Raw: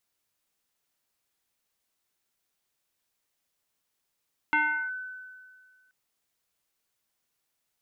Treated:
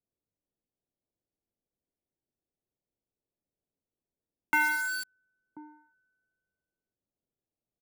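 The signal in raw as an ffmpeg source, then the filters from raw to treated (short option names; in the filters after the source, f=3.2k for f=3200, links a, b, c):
-f lavfi -i "aevalsrc='0.106*pow(10,-3*t/1.88)*sin(2*PI*1510*t+1.3*clip(1-t/0.38,0,1)*sin(2*PI*0.4*1510*t))':d=1.38:s=44100"
-filter_complex "[0:a]acrossover=split=110|620[a][b][c];[b]aecho=1:1:1036:0.422[d];[c]acrusher=bits=5:mix=0:aa=0.000001[e];[a][d][e]amix=inputs=3:normalize=0"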